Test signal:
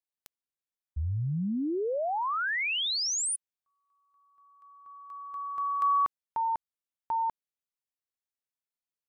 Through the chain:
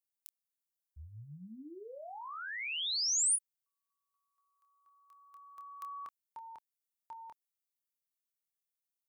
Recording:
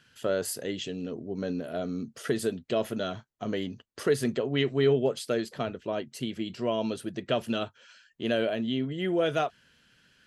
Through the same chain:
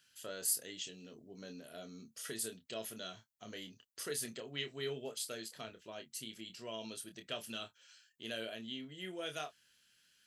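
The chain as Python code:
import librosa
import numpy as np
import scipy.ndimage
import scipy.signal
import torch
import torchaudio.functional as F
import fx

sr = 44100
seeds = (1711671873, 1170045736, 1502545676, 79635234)

y = librosa.effects.preemphasis(x, coef=0.9, zi=[0.0])
y = fx.doubler(y, sr, ms=27.0, db=-7.5)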